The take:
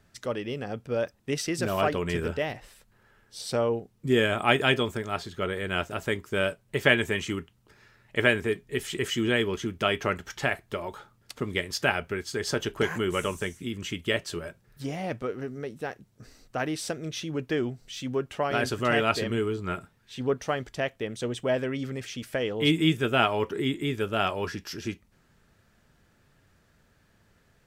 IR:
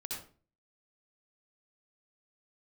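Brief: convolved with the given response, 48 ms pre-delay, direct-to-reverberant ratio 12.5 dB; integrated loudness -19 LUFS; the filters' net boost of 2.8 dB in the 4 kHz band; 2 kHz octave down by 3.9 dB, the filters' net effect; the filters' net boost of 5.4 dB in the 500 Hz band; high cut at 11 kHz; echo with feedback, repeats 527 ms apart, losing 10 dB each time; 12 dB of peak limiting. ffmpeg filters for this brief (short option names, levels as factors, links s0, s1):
-filter_complex "[0:a]lowpass=11000,equalizer=f=500:t=o:g=7,equalizer=f=2000:t=o:g=-7.5,equalizer=f=4000:t=o:g=7.5,alimiter=limit=0.15:level=0:latency=1,aecho=1:1:527|1054|1581|2108:0.316|0.101|0.0324|0.0104,asplit=2[s0][s1];[1:a]atrim=start_sample=2205,adelay=48[s2];[s1][s2]afir=irnorm=-1:irlink=0,volume=0.251[s3];[s0][s3]amix=inputs=2:normalize=0,volume=2.82"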